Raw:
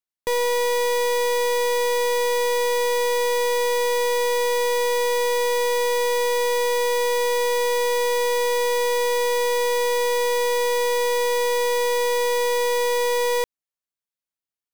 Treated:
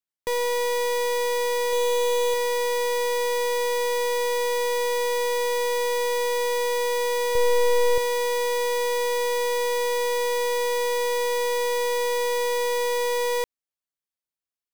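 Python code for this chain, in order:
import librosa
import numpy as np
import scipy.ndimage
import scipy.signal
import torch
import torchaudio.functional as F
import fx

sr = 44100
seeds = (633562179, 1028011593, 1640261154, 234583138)

y = fx.comb(x, sr, ms=5.9, depth=0.47, at=(1.72, 2.34))
y = fx.low_shelf(y, sr, hz=380.0, db=12.0, at=(7.35, 7.98))
y = y * librosa.db_to_amplitude(-3.0)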